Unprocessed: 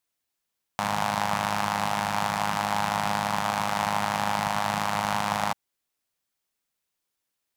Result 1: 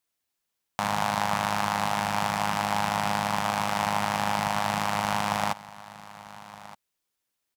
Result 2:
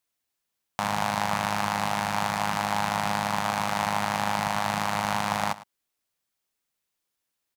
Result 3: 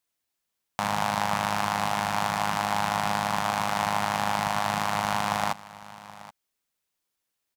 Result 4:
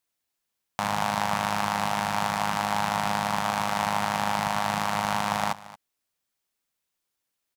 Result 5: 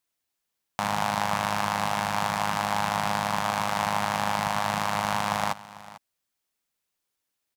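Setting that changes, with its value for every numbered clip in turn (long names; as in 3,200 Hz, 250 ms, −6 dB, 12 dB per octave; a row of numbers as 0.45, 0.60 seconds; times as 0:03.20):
single-tap delay, delay time: 1,219, 106, 777, 227, 447 milliseconds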